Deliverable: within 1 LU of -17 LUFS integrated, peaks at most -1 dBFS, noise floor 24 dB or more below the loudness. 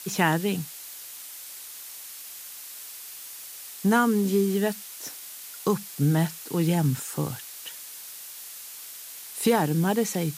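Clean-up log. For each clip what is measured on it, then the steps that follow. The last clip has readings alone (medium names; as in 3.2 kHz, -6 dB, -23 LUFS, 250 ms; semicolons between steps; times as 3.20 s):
noise floor -42 dBFS; noise floor target -52 dBFS; loudness -28.0 LUFS; peak level -8.0 dBFS; loudness target -17.0 LUFS
-> noise reduction 10 dB, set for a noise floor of -42 dBFS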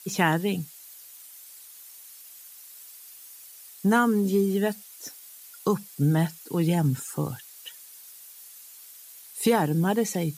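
noise floor -48 dBFS; noise floor target -50 dBFS
-> noise reduction 6 dB, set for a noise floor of -48 dBFS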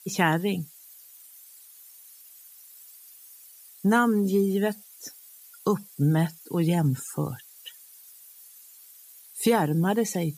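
noise floor -51 dBFS; loudness -25.5 LUFS; peak level -8.0 dBFS; loudness target -17.0 LUFS
-> trim +8.5 dB; peak limiter -1 dBFS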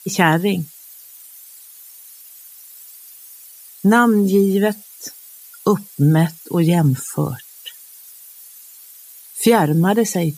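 loudness -17.0 LUFS; peak level -1.0 dBFS; noise floor -42 dBFS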